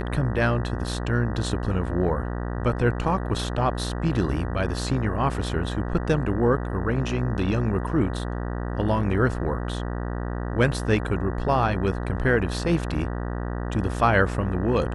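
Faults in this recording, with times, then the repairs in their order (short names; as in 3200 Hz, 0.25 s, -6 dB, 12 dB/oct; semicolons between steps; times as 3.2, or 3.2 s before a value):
buzz 60 Hz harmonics 32 -29 dBFS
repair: de-hum 60 Hz, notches 32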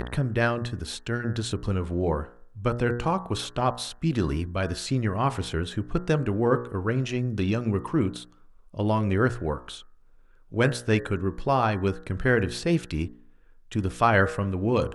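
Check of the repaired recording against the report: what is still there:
none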